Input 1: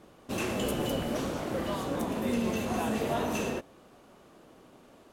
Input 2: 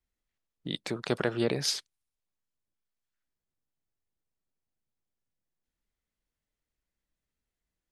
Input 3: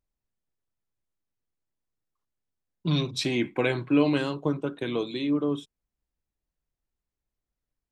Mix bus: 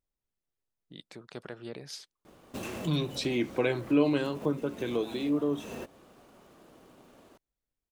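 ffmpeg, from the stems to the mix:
-filter_complex "[0:a]acompressor=threshold=-34dB:ratio=6,acrusher=bits=4:mode=log:mix=0:aa=0.000001,adelay=2250,volume=-1dB[a];[1:a]adelay=250,volume=-13.5dB[b];[2:a]equalizer=f=450:t=o:w=1.4:g=4,volume=-5dB,asplit=2[c][d];[d]apad=whole_len=325233[e];[a][e]sidechaincompress=threshold=-35dB:ratio=8:attack=6.1:release=285[f];[f][b][c]amix=inputs=3:normalize=0"

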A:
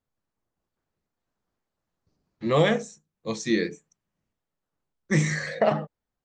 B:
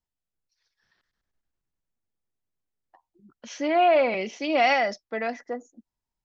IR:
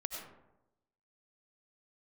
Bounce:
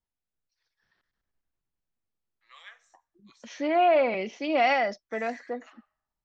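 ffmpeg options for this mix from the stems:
-filter_complex "[0:a]highpass=f=1.2k:w=0.5412,highpass=f=1.2k:w=1.3066,acrossover=split=1900[a][b];[a]aeval=exprs='val(0)*(1-0.5/2+0.5/2*cos(2*PI*2.9*n/s))':c=same[c];[b]aeval=exprs='val(0)*(1-0.5/2-0.5/2*cos(2*PI*2.9*n/s))':c=same[d];[c][d]amix=inputs=2:normalize=0,volume=-16.5dB,asplit=2[e][f];[f]volume=-18dB[g];[1:a]volume=-1.5dB[h];[2:a]atrim=start_sample=2205[i];[g][i]afir=irnorm=-1:irlink=0[j];[e][h][j]amix=inputs=3:normalize=0,highshelf=f=5.9k:g=-11.5"

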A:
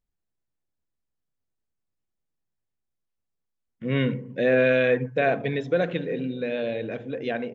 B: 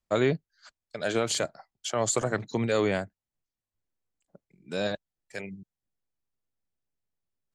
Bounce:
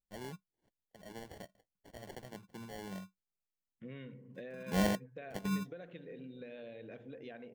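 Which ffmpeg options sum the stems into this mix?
-filter_complex "[0:a]acompressor=threshold=-32dB:ratio=8,volume=-13dB,asplit=2[a][b];[1:a]equalizer=f=190:t=o:w=0.31:g=14,acrusher=samples=35:mix=1:aa=0.000001,volume=-4.5dB[c];[b]apad=whole_len=332554[d];[c][d]sidechaingate=range=-18dB:threshold=-51dB:ratio=16:detection=peak[e];[a][e]amix=inputs=2:normalize=0"

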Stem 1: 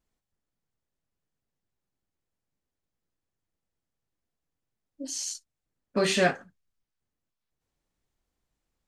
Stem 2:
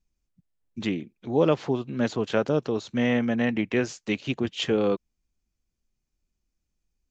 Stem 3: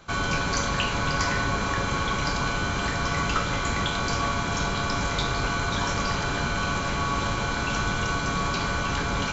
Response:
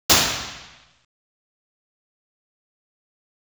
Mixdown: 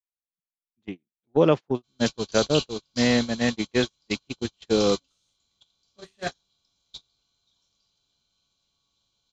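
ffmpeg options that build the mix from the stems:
-filter_complex "[0:a]volume=-1.5dB[a];[1:a]volume=2.5dB[b];[2:a]highshelf=f=2.6k:t=q:w=3:g=12.5,adelay=1750,volume=-12dB[c];[a][b][c]amix=inputs=3:normalize=0,agate=range=-43dB:threshold=-20dB:ratio=16:detection=peak,highshelf=f=10k:g=3"

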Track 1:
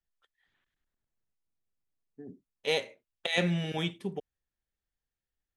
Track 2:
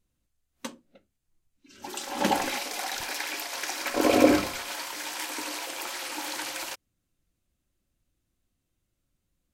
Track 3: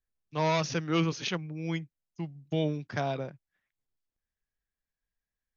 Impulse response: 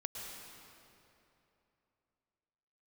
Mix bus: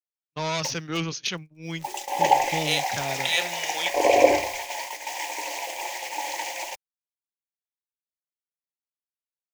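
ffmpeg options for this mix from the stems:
-filter_complex "[0:a]highpass=520,volume=-0.5dB[a];[1:a]firequalizer=gain_entry='entry(110,0);entry(200,-15);entry(360,2);entry(590,10);entry(890,13);entry(1300,-20);entry(1900,6);entry(4000,-8);entry(6700,-2);entry(9900,-20)':delay=0.05:min_phase=1,acrusher=bits=8:dc=4:mix=0:aa=0.000001,volume=-4.5dB[b];[2:a]asoftclip=type=tanh:threshold=-18dB,volume=-1.5dB[c];[a][b][c]amix=inputs=3:normalize=0,agate=range=-44dB:threshold=-37dB:ratio=16:detection=peak,highshelf=f=2.4k:g=12"

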